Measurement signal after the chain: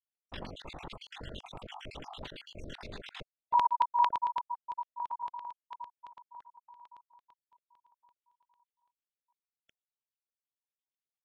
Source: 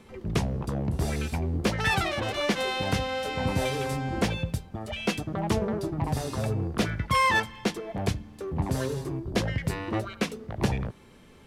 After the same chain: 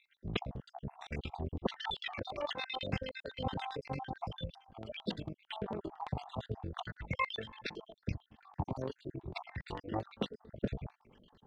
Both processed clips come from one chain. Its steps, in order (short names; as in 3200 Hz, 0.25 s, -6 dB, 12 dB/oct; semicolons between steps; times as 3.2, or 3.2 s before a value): random spectral dropouts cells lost 56%; AM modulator 47 Hz, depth 45%; LFO low-pass square 8.9 Hz 890–3400 Hz; gain -6.5 dB